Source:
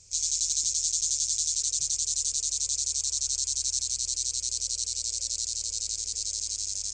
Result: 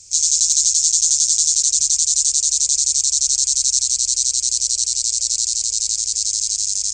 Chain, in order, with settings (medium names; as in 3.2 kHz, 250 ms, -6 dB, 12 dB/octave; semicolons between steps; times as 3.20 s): treble shelf 3.2 kHz +12 dB; trim +2 dB